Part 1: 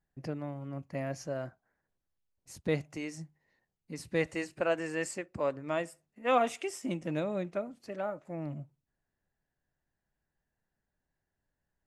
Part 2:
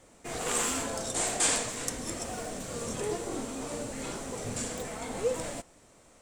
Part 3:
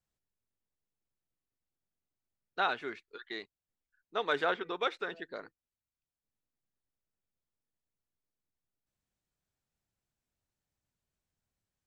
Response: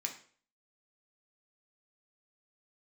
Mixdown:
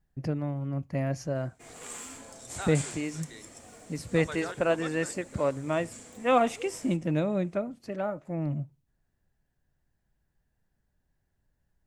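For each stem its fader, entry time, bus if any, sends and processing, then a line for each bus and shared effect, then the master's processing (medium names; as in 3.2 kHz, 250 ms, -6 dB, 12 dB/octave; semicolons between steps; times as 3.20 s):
+2.5 dB, 0.00 s, no send, bass shelf 200 Hz +10.5 dB
-5.0 dB, 1.35 s, send -15 dB, peaking EQ 100 Hz +9 dB 0.77 oct; auto duck -12 dB, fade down 1.95 s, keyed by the first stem
-8.5 dB, 0.00 s, no send, none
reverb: on, RT60 0.45 s, pre-delay 3 ms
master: none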